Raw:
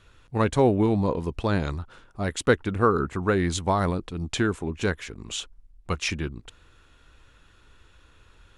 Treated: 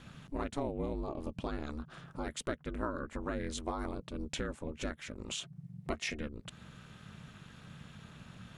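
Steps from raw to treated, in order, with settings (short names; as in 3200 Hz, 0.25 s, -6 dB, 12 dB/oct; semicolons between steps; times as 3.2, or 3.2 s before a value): compressor 3:1, threshold -43 dBFS, peak gain reduction 21 dB; 5.4–6.16 small resonant body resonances 540/2000 Hz, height 10 dB -> 15 dB; ring modulator 150 Hz; gain +5.5 dB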